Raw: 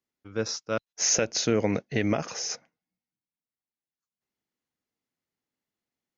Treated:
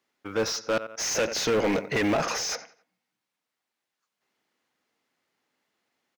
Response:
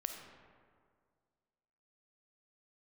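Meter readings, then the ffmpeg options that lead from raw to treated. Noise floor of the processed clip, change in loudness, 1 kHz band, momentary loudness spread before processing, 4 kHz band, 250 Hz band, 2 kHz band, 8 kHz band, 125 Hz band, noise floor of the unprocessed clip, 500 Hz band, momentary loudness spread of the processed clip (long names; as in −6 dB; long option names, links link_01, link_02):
−85 dBFS, +0.5 dB, +5.5 dB, 10 LU, +1.0 dB, 0.0 dB, +4.5 dB, can't be measured, −4.0 dB, below −85 dBFS, +2.5 dB, 6 LU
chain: -filter_complex "[0:a]asplit=2[link_01][link_02];[link_02]adelay=90,lowpass=frequency=4100:poles=1,volume=-22dB,asplit=2[link_03][link_04];[link_04]adelay=90,lowpass=frequency=4100:poles=1,volume=0.4,asplit=2[link_05][link_06];[link_06]adelay=90,lowpass=frequency=4100:poles=1,volume=0.4[link_07];[link_01][link_03][link_05][link_07]amix=inputs=4:normalize=0,acrusher=bits=8:mode=log:mix=0:aa=0.000001,asplit=2[link_08][link_09];[link_09]highpass=frequency=720:poles=1,volume=28dB,asoftclip=type=tanh:threshold=-11.5dB[link_10];[link_08][link_10]amix=inputs=2:normalize=0,lowpass=frequency=2500:poles=1,volume=-6dB,volume=-4.5dB"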